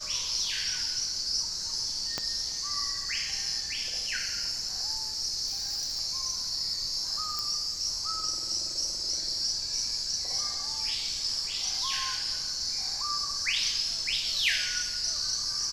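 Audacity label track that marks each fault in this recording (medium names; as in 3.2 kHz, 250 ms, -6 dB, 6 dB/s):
2.180000	2.180000	pop -15 dBFS
5.460000	6.000000	clipped -27.5 dBFS
7.390000	7.390000	pop -18 dBFS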